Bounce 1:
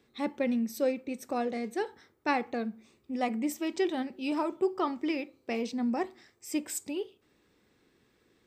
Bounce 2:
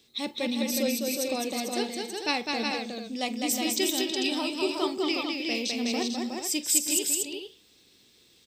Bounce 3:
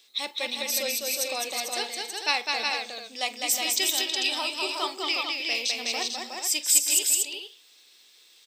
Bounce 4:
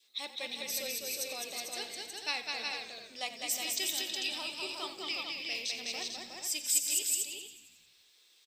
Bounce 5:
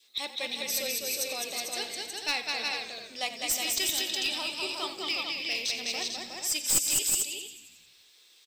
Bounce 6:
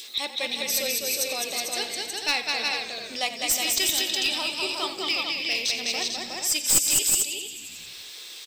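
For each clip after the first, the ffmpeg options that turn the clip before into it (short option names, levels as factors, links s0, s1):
-filter_complex "[0:a]highshelf=f=2400:t=q:w=1.5:g=13.5,asplit=2[s0][s1];[s1]aecho=0:1:43|205|319|365|444:0.133|0.668|0.188|0.631|0.422[s2];[s0][s2]amix=inputs=2:normalize=0,volume=0.841"
-filter_complex "[0:a]highpass=790,asplit=2[s0][s1];[s1]asoftclip=type=tanh:threshold=0.106,volume=0.335[s2];[s0][s2]amix=inputs=2:normalize=0,volume=1.26"
-filter_complex "[0:a]adynamicequalizer=threshold=0.00501:dfrequency=960:dqfactor=0.99:tfrequency=960:tqfactor=0.99:attack=5:release=100:ratio=0.375:range=2.5:mode=cutabove:tftype=bell,asplit=2[s0][s1];[s1]asplit=7[s2][s3][s4][s5][s6][s7][s8];[s2]adelay=90,afreqshift=-49,volume=0.211[s9];[s3]adelay=180,afreqshift=-98,volume=0.135[s10];[s4]adelay=270,afreqshift=-147,volume=0.0861[s11];[s5]adelay=360,afreqshift=-196,volume=0.0556[s12];[s6]adelay=450,afreqshift=-245,volume=0.0355[s13];[s7]adelay=540,afreqshift=-294,volume=0.0226[s14];[s8]adelay=630,afreqshift=-343,volume=0.0145[s15];[s9][s10][s11][s12][s13][s14][s15]amix=inputs=7:normalize=0[s16];[s0][s16]amix=inputs=2:normalize=0,volume=0.376"
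-af "aeval=exprs='clip(val(0),-1,0.0355)':c=same,volume=1.88"
-af "acompressor=mode=upward:threshold=0.0224:ratio=2.5,volume=1.78"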